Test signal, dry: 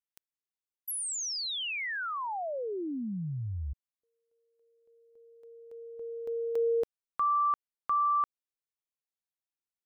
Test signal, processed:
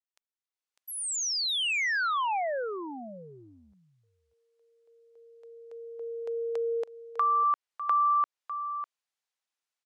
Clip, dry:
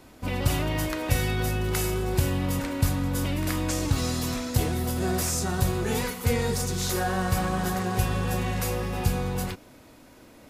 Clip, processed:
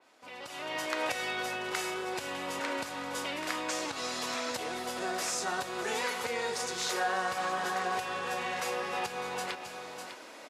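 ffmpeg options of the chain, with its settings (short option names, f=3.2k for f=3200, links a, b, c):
-filter_complex "[0:a]asplit=2[a][b];[b]aecho=0:1:601:0.178[c];[a][c]amix=inputs=2:normalize=0,acompressor=threshold=-30dB:ratio=6:attack=6.3:release=395:knee=6:detection=peak,highpass=590,lowpass=7.6k,dynaudnorm=f=260:g=5:m=15dB,adynamicequalizer=threshold=0.0158:dfrequency=3800:dqfactor=0.7:tfrequency=3800:tqfactor=0.7:attack=5:release=100:ratio=0.375:range=2:mode=cutabove:tftype=highshelf,volume=-7dB"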